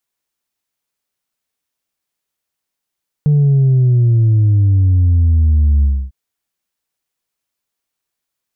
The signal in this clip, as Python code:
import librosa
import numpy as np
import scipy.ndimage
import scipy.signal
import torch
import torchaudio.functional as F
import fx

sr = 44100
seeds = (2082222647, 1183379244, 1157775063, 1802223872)

y = fx.sub_drop(sr, level_db=-8.5, start_hz=150.0, length_s=2.85, drive_db=1.5, fade_s=0.28, end_hz=65.0)